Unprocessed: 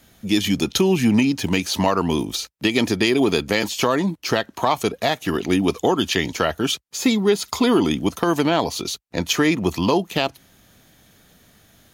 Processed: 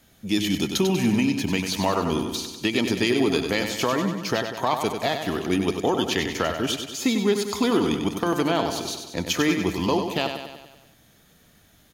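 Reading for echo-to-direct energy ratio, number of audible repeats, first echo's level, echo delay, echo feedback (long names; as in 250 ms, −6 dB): −5.5 dB, 6, −7.0 dB, 96 ms, 57%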